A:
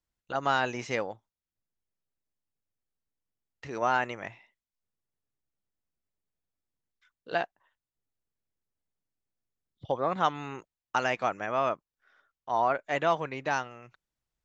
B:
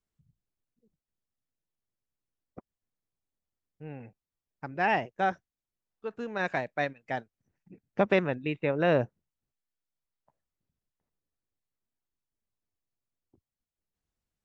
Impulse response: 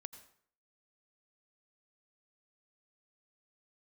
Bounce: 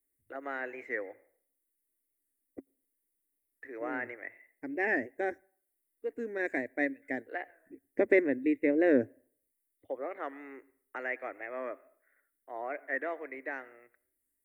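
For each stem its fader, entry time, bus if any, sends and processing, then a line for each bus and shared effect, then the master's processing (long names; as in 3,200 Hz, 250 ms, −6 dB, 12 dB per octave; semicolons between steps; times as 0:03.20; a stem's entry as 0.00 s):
−8.0 dB, 0.00 s, send −3 dB, three-way crossover with the lows and the highs turned down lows −19 dB, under 460 Hz, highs −12 dB, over 3,700 Hz
−4.0 dB, 0.00 s, send −17.5 dB, bass and treble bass −4 dB, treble +13 dB; notch filter 1,300 Hz, Q 6.7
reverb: on, RT60 0.55 s, pre-delay 78 ms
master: drawn EQ curve 110 Hz 0 dB, 170 Hz −23 dB, 270 Hz +13 dB, 570 Hz +1 dB, 940 Hz −14 dB, 1,400 Hz −7 dB, 2,000 Hz +8 dB, 2,900 Hz −18 dB, 6,000 Hz −19 dB, 9,300 Hz +6 dB; wow of a warped record 45 rpm, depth 100 cents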